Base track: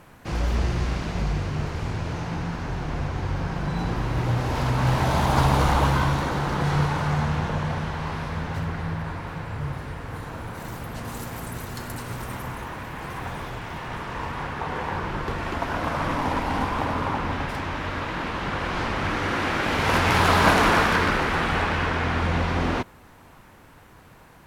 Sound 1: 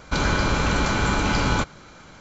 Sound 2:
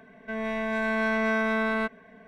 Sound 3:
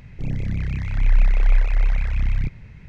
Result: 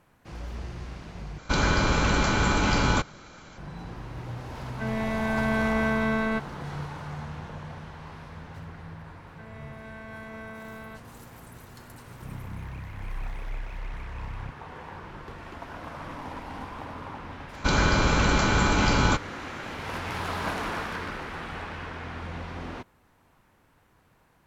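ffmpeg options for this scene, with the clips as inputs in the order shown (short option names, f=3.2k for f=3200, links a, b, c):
-filter_complex "[1:a]asplit=2[a][b];[2:a]asplit=2[c][d];[0:a]volume=-13dB[e];[c]lowshelf=f=180:g=10.5[f];[3:a]highpass=45[g];[e]asplit=2[h][i];[h]atrim=end=1.384[j];[a]atrim=end=2.2,asetpts=PTS-STARTPTS,volume=-1.5dB[k];[i]atrim=start=3.576[l];[f]atrim=end=2.27,asetpts=PTS-STARTPTS,volume=-2dB,afade=t=in:d=0.004:c=hsin,afade=t=out:st=2.266:d=0.004:c=hsin,adelay=4520[m];[d]atrim=end=2.27,asetpts=PTS-STARTPTS,volume=-16.5dB,afade=t=in:d=0.004:c=hsin,afade=t=out:st=2.266:d=0.004:c=hsin,adelay=9100[n];[g]atrim=end=2.88,asetpts=PTS-STARTPTS,volume=-12.5dB,afade=t=in:d=0.004:c=hsin,afade=t=out:st=2.876:d=0.004:c=hsin,adelay=12020[o];[b]atrim=end=2.2,asetpts=PTS-STARTPTS,volume=-0.5dB,afade=t=in:d=0.004:c=hsin,afade=t=out:st=2.196:d=0.004:c=hsin,adelay=17530[p];[j][k]acrossfade=d=0.004:c1=hsin:c2=hsin[q];[q][l]acrossfade=d=0.004:c1=hsin:c2=hsin[r];[r][m][n][o][p]amix=inputs=5:normalize=0"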